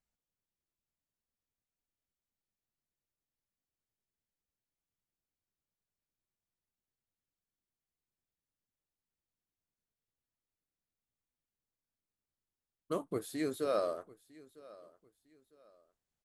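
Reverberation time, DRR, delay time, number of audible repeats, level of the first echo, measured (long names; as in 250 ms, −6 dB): no reverb audible, no reverb audible, 953 ms, 2, −21.5 dB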